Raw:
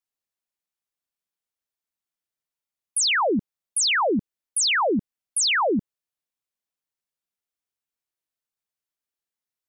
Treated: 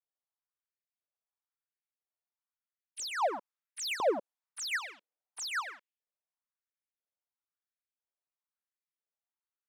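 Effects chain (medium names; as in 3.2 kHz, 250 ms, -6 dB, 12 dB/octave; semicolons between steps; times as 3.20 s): hard clipper -28.5 dBFS, distortion -10 dB; dynamic bell 2.9 kHz, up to -6 dB, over -45 dBFS, Q 3.6; LFO high-pass saw up 1 Hz 440–2900 Hz; 3.17–5.47 s: peaking EQ 270 Hz +10 dB 3 oct; level-controlled noise filter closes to 1.7 kHz, open at -26 dBFS; trim -8 dB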